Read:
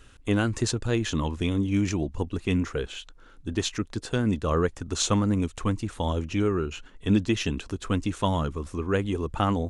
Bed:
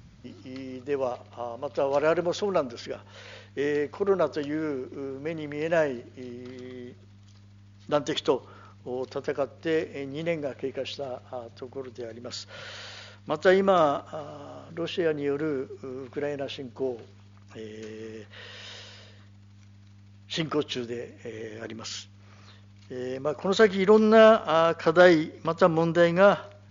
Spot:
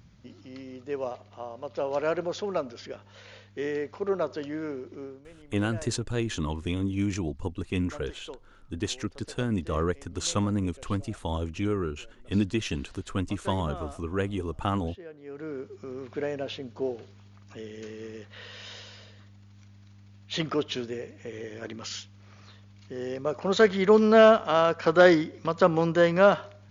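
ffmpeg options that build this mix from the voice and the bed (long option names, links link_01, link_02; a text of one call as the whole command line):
ffmpeg -i stem1.wav -i stem2.wav -filter_complex "[0:a]adelay=5250,volume=-3.5dB[link_01];[1:a]volume=14dB,afade=type=out:start_time=5.02:duration=0.23:silence=0.188365,afade=type=in:start_time=15.22:duration=0.74:silence=0.125893[link_02];[link_01][link_02]amix=inputs=2:normalize=0" out.wav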